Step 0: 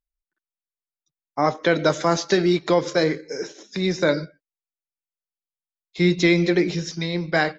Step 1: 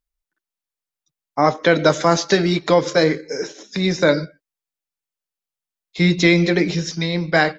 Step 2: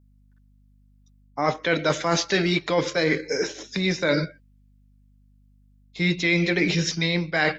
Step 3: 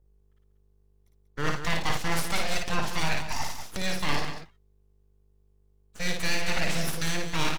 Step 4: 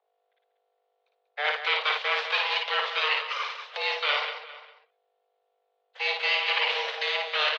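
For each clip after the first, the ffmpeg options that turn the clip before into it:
-af "bandreject=f=360:w=12,volume=4.5dB"
-af "adynamicequalizer=threshold=0.02:dfrequency=2500:dqfactor=1.1:tfrequency=2500:tqfactor=1.1:attack=5:release=100:ratio=0.375:range=4:mode=boostabove:tftype=bell,areverse,acompressor=threshold=-20dB:ratio=6,areverse,aeval=exprs='val(0)+0.00141*(sin(2*PI*50*n/s)+sin(2*PI*2*50*n/s)/2+sin(2*PI*3*50*n/s)/3+sin(2*PI*4*50*n/s)/4+sin(2*PI*5*50*n/s)/5)':c=same,volume=1dB"
-filter_complex "[0:a]acrossover=split=150[a][b];[b]aeval=exprs='abs(val(0))':c=same[c];[a][c]amix=inputs=2:normalize=0,aecho=1:1:55.39|189.5:0.631|0.355,volume=-4dB"
-filter_complex "[0:a]highpass=f=180:t=q:w=0.5412,highpass=f=180:t=q:w=1.307,lowpass=f=3.4k:t=q:w=0.5176,lowpass=f=3.4k:t=q:w=0.7071,lowpass=f=3.4k:t=q:w=1.932,afreqshift=300,asplit=2[a][b];[b]adelay=402.3,volume=-17dB,highshelf=f=4k:g=-9.05[c];[a][c]amix=inputs=2:normalize=0,crystalizer=i=4.5:c=0"

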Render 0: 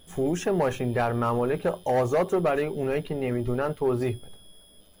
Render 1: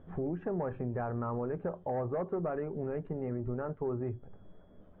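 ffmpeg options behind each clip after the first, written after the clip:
-af "equalizer=f=150:t=o:w=2.2:g=4.5,acompressor=threshold=-41dB:ratio=2,lowpass=f=1.6k:w=0.5412,lowpass=f=1.6k:w=1.3066"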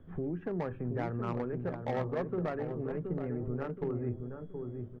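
-filter_complex "[0:a]asplit=2[a][b];[b]adelay=724,lowpass=f=1.2k:p=1,volume=-5dB,asplit=2[c][d];[d]adelay=724,lowpass=f=1.2k:p=1,volume=0.4,asplit=2[e][f];[f]adelay=724,lowpass=f=1.2k:p=1,volume=0.4,asplit=2[g][h];[h]adelay=724,lowpass=f=1.2k:p=1,volume=0.4,asplit=2[i][j];[j]adelay=724,lowpass=f=1.2k:p=1,volume=0.4[k];[a][c][e][g][i][k]amix=inputs=6:normalize=0,acrossover=split=210|550|980[l][m][n][o];[n]acrusher=bits=5:mix=0:aa=0.5[p];[l][m][p][o]amix=inputs=4:normalize=0"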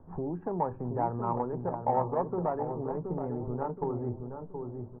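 -af "lowpass=f=910:t=q:w=5.9"

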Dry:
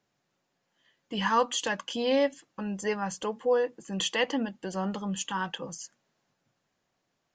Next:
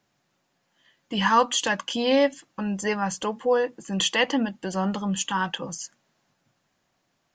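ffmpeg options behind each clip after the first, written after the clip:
-af "equalizer=f=450:t=o:w=0.49:g=-4,volume=6dB"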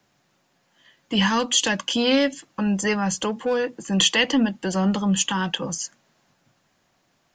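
-filter_complex "[0:a]acrossover=split=320|620|2000[a][b][c][d];[b]asoftclip=type=tanh:threshold=-34dB[e];[c]acompressor=threshold=-37dB:ratio=6[f];[a][e][f][d]amix=inputs=4:normalize=0,volume=6dB"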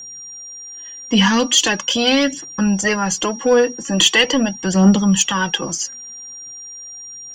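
-af "aphaser=in_gain=1:out_gain=1:delay=4.4:decay=0.52:speed=0.41:type=triangular,acontrast=29,aeval=exprs='val(0)+0.0251*sin(2*PI*5700*n/s)':c=same"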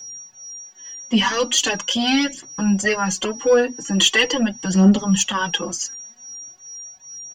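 -filter_complex "[0:a]asplit=2[a][b];[b]adelay=4.7,afreqshift=2.4[c];[a][c]amix=inputs=2:normalize=1"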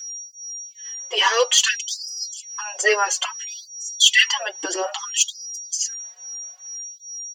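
-af "afftfilt=real='re*gte(b*sr/1024,300*pow(4900/300,0.5+0.5*sin(2*PI*0.59*pts/sr)))':imag='im*gte(b*sr/1024,300*pow(4900/300,0.5+0.5*sin(2*PI*0.59*pts/sr)))':win_size=1024:overlap=0.75,volume=2.5dB"

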